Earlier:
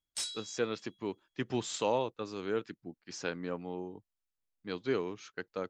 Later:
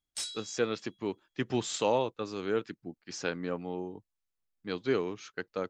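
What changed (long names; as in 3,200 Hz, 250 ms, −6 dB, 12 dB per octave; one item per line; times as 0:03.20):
speech +3.0 dB
master: add notch filter 980 Hz, Q 24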